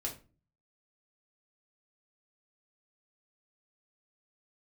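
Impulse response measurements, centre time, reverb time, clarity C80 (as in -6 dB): 17 ms, 0.35 s, 16.5 dB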